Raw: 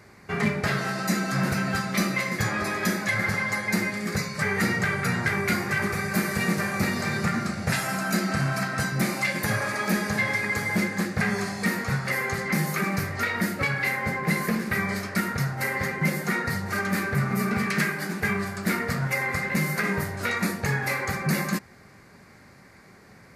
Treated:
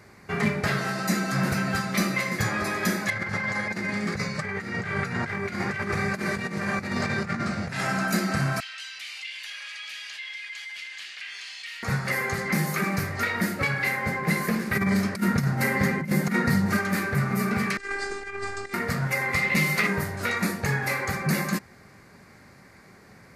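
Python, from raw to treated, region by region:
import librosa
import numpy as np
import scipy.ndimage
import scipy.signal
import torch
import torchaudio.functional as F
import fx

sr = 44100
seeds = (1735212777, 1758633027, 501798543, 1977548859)

y = fx.chain(x, sr, fx.air_absorb(metres=65.0),
    fx.doubler(ms=30.0, db=-11.0),
    fx.over_compress(threshold_db=-28.0, ratio=-0.5), at=(3.1, 8.08))
y = fx.chain(y, sr, fx.ladder_bandpass(hz=3200.0, resonance_pct=75),
    fx.env_flatten(amount_pct=70), at=(8.6, 11.83))
y = fx.chain(y, sr, fx.peak_eq(hz=210.0, db=10.0, octaves=1.1),
    fx.over_compress(threshold_db=-22.0, ratio=-0.5), at=(14.75, 16.77))
y = fx.chain(y, sr, fx.steep_lowpass(hz=9100.0, slope=72),
    fx.over_compress(threshold_db=-29.0, ratio=-0.5),
    fx.robotise(hz=399.0), at=(17.77, 18.74))
y = fx.chain(y, sr, fx.peak_eq(hz=3000.0, db=9.5, octaves=1.5),
    fx.notch(hz=1600.0, q=6.3), at=(19.33, 19.87))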